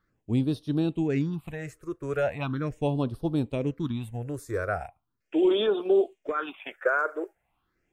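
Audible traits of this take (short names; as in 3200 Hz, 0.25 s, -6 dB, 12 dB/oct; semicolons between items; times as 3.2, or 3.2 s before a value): phasing stages 6, 0.39 Hz, lowest notch 210–2100 Hz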